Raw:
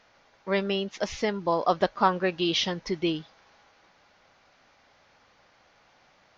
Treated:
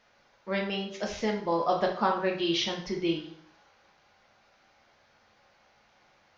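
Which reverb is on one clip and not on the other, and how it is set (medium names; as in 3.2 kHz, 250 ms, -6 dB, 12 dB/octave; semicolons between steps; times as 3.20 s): plate-style reverb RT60 0.59 s, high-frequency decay 0.85×, DRR 0 dB; trim -5.5 dB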